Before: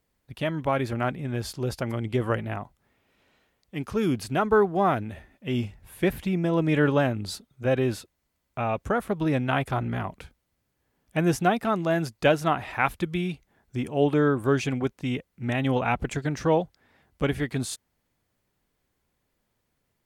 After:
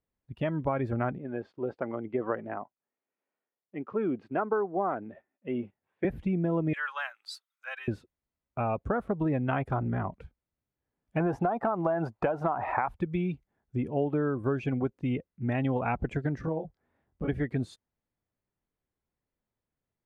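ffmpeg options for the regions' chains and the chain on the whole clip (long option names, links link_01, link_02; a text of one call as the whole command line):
ffmpeg -i in.wav -filter_complex "[0:a]asettb=1/sr,asplit=3[link_01][link_02][link_03];[link_01]atrim=end=1.184[link_04];[link_02]atrim=start=1.18:end=6.05,asetpts=PTS-STARTPTS,afade=type=in:duration=0.004:curve=qsin,afade=type=out:start_time=4.866:duration=0.004:curve=qsin,highpass=290,lowpass=2500,agate=range=-9dB:threshold=-52dB:ratio=16:release=100:detection=peak[link_05];[link_03]atrim=start=6.046[link_06];[link_04][link_05]acrossfade=duration=0.004:curve1=hsin:curve2=qsin[link_07];[link_07][link_06]acrossfade=duration=0.004:curve1=qsin:curve2=hsin,asettb=1/sr,asplit=3[link_08][link_09][link_10];[link_08]atrim=end=6.734[link_11];[link_09]atrim=start=6.73:end=7.88,asetpts=PTS-STARTPTS,afade=type=in:duration=0.004:curve=qsin,afade=type=out:start_time=1.146:duration=0.004:curve=qsin,highpass=frequency=1100:width=0.5412,highpass=frequency=1100:width=1.3066,aemphasis=mode=production:type=50kf[link_12];[link_10]atrim=start=7.876[link_13];[link_11][link_12]acrossfade=duration=0.004:curve1=hsin:curve2=qsin[link_14];[link_14][link_13]acrossfade=duration=0.004:curve1=qsin:curve2=hsin,asettb=1/sr,asplit=3[link_15][link_16][link_17];[link_15]atrim=end=11.204[link_18];[link_16]atrim=start=11.2:end=12.88,asetpts=PTS-STARTPTS,afade=type=in:duration=0.004:curve=qsin,afade=type=out:start_time=1.676:duration=0.004:curve=qsin,equalizer=frequency=850:width=0.77:gain=15,acompressor=threshold=-16dB:ratio=4:attack=3.2:release=140:knee=1:detection=peak[link_19];[link_17]atrim=start=12.876[link_20];[link_18][link_19]acrossfade=duration=0.004:curve1=hsin:curve2=qsin[link_21];[link_21][link_20]acrossfade=duration=0.004:curve1=qsin:curve2=hsin,asettb=1/sr,asplit=3[link_22][link_23][link_24];[link_22]atrim=end=16.414[link_25];[link_23]atrim=start=16.41:end=17.28,asetpts=PTS-STARTPTS,afade=type=in:duration=0.004:curve=qsin,afade=type=out:start_time=0.866:duration=0.004:curve=qsin,acompressor=threshold=-30dB:ratio=5:attack=3.2:release=140:knee=1:detection=peak,highshelf=frequency=2100:gain=-8.5,asplit=2[link_26][link_27];[link_27]adelay=25,volume=-2dB[link_28];[link_26][link_28]amix=inputs=2:normalize=0,atrim=end_sample=38367[link_29];[link_24]atrim=start=17.276[link_30];[link_25][link_29]acrossfade=duration=0.004:curve1=hsin:curve2=qsin[link_31];[link_31][link_30]acrossfade=duration=0.004:curve1=qsin:curve2=hsin,lowpass=frequency=1700:poles=1,acompressor=threshold=-24dB:ratio=10,afftdn=noise_reduction=12:noise_floor=-41" out.wav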